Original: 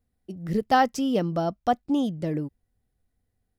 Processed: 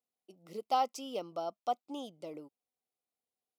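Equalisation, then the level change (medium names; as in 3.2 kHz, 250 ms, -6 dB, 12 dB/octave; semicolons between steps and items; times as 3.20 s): high-pass 530 Hz 12 dB/octave; Butterworth band-stop 1.7 kHz, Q 2.1; -8.0 dB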